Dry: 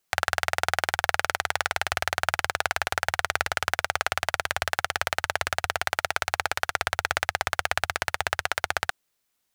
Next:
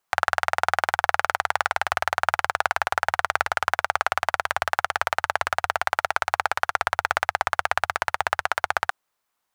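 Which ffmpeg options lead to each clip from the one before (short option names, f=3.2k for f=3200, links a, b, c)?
-af "equalizer=f=1k:t=o:w=1.6:g=12,volume=-4.5dB"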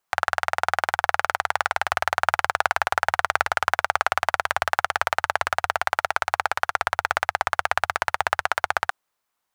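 -af "dynaudnorm=f=100:g=17:m=11.5dB,volume=-1dB"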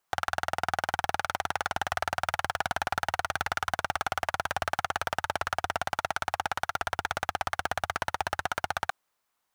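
-af "asoftclip=type=hard:threshold=-19dB"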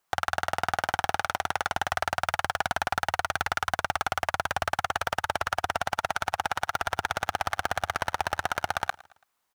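-af "aecho=1:1:111|222|333:0.0794|0.0342|0.0147,volume=2dB"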